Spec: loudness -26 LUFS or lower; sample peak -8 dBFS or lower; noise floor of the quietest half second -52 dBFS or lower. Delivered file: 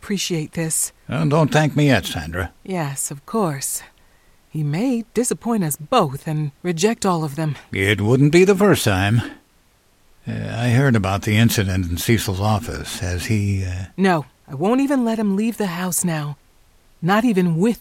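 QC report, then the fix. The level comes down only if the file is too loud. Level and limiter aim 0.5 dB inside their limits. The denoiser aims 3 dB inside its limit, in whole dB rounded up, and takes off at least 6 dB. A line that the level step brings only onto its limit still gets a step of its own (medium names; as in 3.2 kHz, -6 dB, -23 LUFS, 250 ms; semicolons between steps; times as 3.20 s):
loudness -19.5 LUFS: fail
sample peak -2.5 dBFS: fail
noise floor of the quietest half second -57 dBFS: pass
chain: trim -7 dB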